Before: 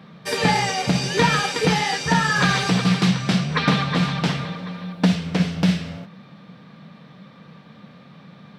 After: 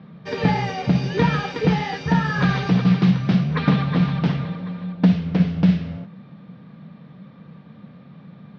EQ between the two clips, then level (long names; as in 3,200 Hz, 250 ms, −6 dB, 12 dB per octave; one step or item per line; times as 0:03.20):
Butterworth low-pass 6,600 Hz 36 dB per octave
high-frequency loss of the air 180 metres
low-shelf EQ 390 Hz +9 dB
−4.5 dB